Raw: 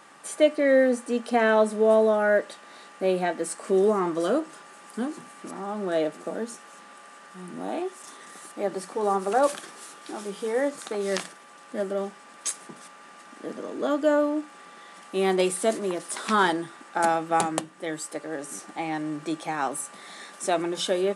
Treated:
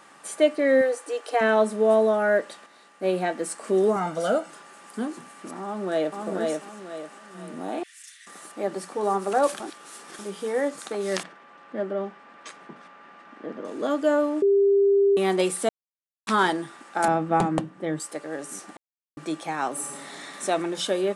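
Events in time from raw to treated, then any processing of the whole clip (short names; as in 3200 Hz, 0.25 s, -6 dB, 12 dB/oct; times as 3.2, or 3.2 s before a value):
0.81–1.41 brick-wall FIR high-pass 280 Hz
2.66–3.13 upward expander, over -34 dBFS
3.96–4.5 comb 1.4 ms, depth 78%
5.63–6.2 echo throw 0.49 s, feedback 35%, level -2.5 dB
7.83–8.27 steep high-pass 1700 Hz 48 dB/oct
9.6–10.19 reverse
11.23–13.65 LPF 2700 Hz
14.42–15.17 bleep 398 Hz -15.5 dBFS
15.69–16.27 mute
17.08–18 RIAA curve playback
18.77–19.17 mute
19.71–20.41 reverb throw, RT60 2.5 s, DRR -2 dB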